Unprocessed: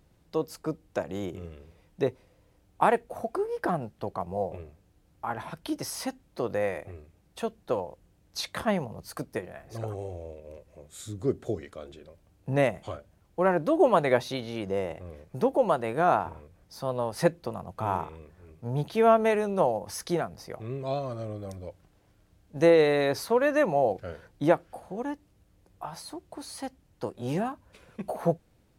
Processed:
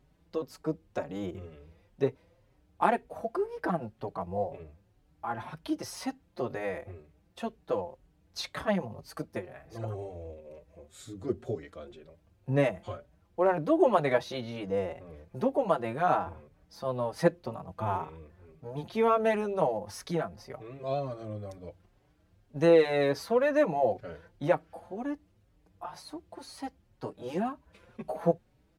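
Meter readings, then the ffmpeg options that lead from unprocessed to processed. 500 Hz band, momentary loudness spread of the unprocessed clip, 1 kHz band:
−2.5 dB, 18 LU, −2.5 dB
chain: -filter_complex "[0:a]asplit=2[link_01][link_02];[link_02]adynamicsmooth=sensitivity=7:basefreq=6400,volume=0dB[link_03];[link_01][link_03]amix=inputs=2:normalize=0,asplit=2[link_04][link_05];[link_05]adelay=5,afreqshift=2[link_06];[link_04][link_06]amix=inputs=2:normalize=1,volume=-5.5dB"

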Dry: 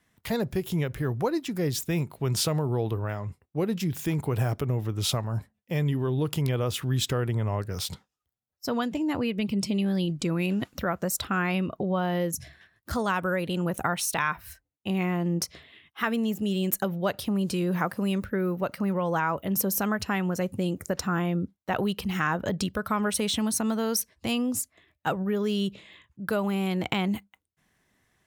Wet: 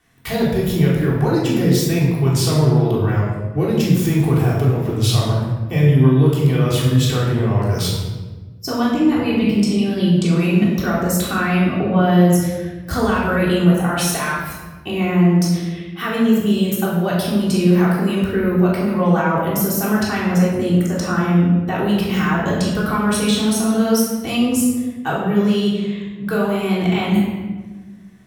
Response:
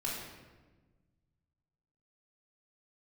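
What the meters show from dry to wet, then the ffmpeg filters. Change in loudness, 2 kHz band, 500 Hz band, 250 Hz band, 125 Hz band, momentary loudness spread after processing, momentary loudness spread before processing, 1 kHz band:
+11.0 dB, +8.0 dB, +10.0 dB, +12.0 dB, +12.5 dB, 8 LU, 5 LU, +8.0 dB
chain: -filter_complex "[0:a]alimiter=limit=-21.5dB:level=0:latency=1:release=85[link_01];[1:a]atrim=start_sample=2205[link_02];[link_01][link_02]afir=irnorm=-1:irlink=0,volume=8.5dB"

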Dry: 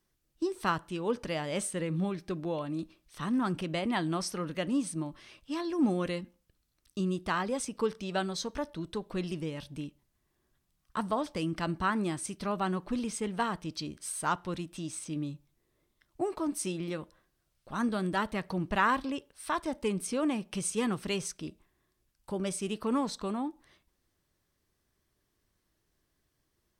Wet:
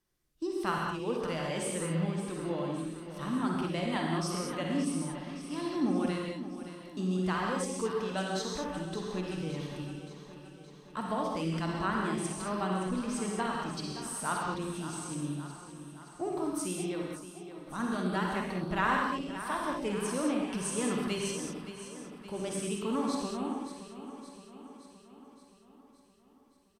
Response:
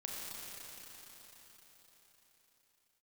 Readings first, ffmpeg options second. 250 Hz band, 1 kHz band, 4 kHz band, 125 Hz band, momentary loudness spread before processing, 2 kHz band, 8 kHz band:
0.0 dB, −0.5 dB, 0.0 dB, +1.0 dB, 9 LU, 0.0 dB, 0.0 dB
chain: -filter_complex "[0:a]aecho=1:1:570|1140|1710|2280|2850|3420|3990:0.251|0.148|0.0874|0.0516|0.0304|0.018|0.0106[link_01];[1:a]atrim=start_sample=2205,atrim=end_sample=6615,asetrate=29547,aresample=44100[link_02];[link_01][link_02]afir=irnorm=-1:irlink=0,volume=-1dB"

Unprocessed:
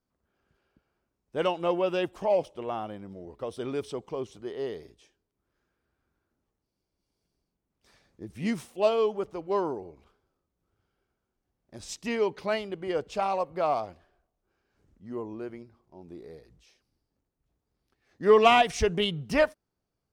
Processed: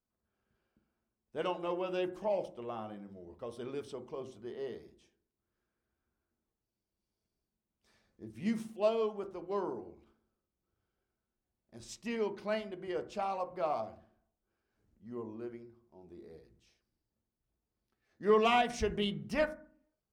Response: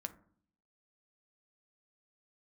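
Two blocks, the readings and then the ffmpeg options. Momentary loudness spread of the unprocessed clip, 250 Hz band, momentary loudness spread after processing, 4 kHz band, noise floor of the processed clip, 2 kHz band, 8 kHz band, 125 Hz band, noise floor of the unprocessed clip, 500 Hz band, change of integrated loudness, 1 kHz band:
19 LU, −5.0 dB, 20 LU, −8.5 dB, below −85 dBFS, −8.0 dB, −8.5 dB, −7.0 dB, −84 dBFS, −8.0 dB, −8.0 dB, −8.0 dB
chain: -filter_complex "[1:a]atrim=start_sample=2205,asetrate=48510,aresample=44100[link_01];[0:a][link_01]afir=irnorm=-1:irlink=0,volume=-4.5dB"

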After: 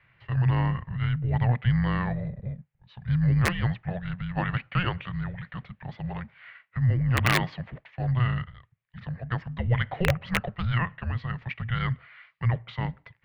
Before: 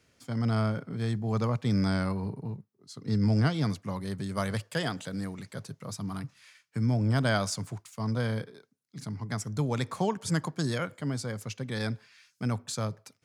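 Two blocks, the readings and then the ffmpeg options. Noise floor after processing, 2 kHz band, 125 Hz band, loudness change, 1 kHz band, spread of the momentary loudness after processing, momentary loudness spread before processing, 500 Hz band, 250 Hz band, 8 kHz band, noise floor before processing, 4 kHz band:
−70 dBFS, +6.5 dB, +5.0 dB, +3.5 dB, +3.5 dB, 15 LU, 14 LU, −3.0 dB, −1.0 dB, −6.0 dB, −73 dBFS, +1.0 dB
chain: -af "highpass=frequency=170:width_type=q:width=0.5412,highpass=frequency=170:width_type=q:width=1.307,lowpass=frequency=3500:width_type=q:width=0.5176,lowpass=frequency=3500:width_type=q:width=0.7071,lowpass=frequency=3500:width_type=q:width=1.932,afreqshift=-360,aeval=exprs='(mod(7.94*val(0)+1,2)-1)/7.94':channel_layout=same,equalizer=frequency=125:width_type=o:width=1:gain=12,equalizer=frequency=250:width_type=o:width=1:gain=-8,equalizer=frequency=500:width_type=o:width=1:gain=6,equalizer=frequency=2000:width_type=o:width=1:gain=12"

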